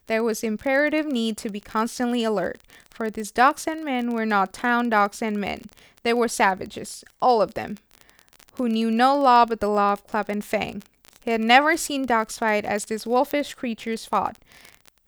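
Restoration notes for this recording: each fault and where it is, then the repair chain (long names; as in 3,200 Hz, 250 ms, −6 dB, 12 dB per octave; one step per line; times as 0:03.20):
surface crackle 25 per second −27 dBFS
0:13.31: click −11 dBFS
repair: click removal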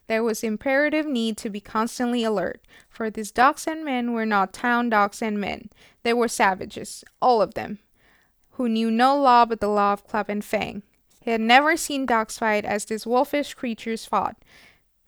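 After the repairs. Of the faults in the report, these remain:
none of them is left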